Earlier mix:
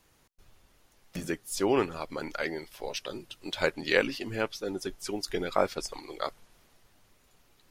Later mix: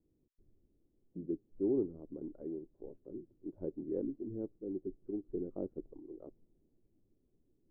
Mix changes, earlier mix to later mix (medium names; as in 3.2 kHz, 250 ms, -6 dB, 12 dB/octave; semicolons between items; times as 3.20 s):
background: add band-pass filter 290 Hz, Q 1.5; master: add four-pole ladder low-pass 390 Hz, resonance 50%